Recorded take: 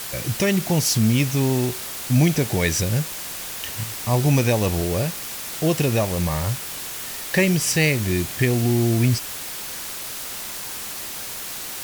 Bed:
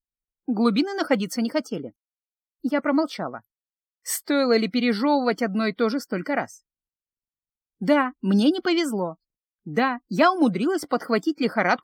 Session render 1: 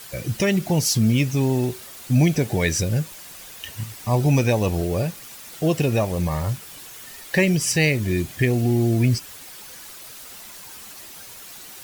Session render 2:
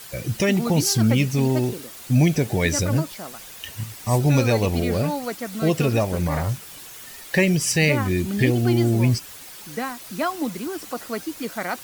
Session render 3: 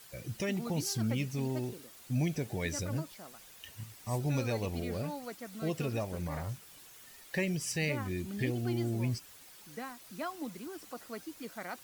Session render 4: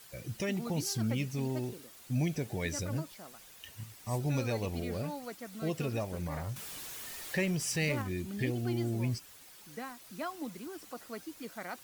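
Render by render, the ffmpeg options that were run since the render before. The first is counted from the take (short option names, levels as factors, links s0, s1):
-af "afftdn=nr=10:nf=-32"
-filter_complex "[1:a]volume=0.447[s0];[0:a][s0]amix=inputs=2:normalize=0"
-af "volume=0.2"
-filter_complex "[0:a]asettb=1/sr,asplit=3[s0][s1][s2];[s0]atrim=end=6.564[s3];[s1]atrim=start=6.56:end=8.02,asetpts=PTS-STARTPTS,afade=t=in:d=0.004:c=qsin,afade=t=out:st=1.456:d=0.004:c=qsin,aeval=exprs='val(0)+0.5*0.00944*sgn(val(0))':c=same[s4];[s2]atrim=start=8.016[s5];[s3][s4]acrossfade=d=0.004:c1=hsin:c2=qsin[s6];[s6][s5]acrossfade=d=0.004:c1=qsin:c2=hsin"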